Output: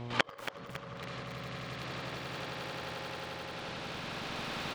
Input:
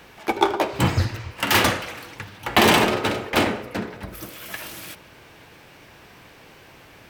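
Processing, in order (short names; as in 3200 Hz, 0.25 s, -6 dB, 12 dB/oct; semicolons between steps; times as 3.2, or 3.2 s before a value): speed glide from 136% -> 163%; recorder AGC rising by 71 dB/s; LPF 4300 Hz 12 dB/oct; level quantiser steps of 21 dB; transient shaper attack -7 dB, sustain +11 dB; echo 0.135 s -11.5 dB; buzz 120 Hz, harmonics 9, -50 dBFS -6 dB/oct; on a send: swelling echo 88 ms, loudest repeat 8, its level -3.5 dB; on the sum: flipped gate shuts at -17 dBFS, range -33 dB; lo-fi delay 0.278 s, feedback 55%, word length 8-bit, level -10 dB; gain +8.5 dB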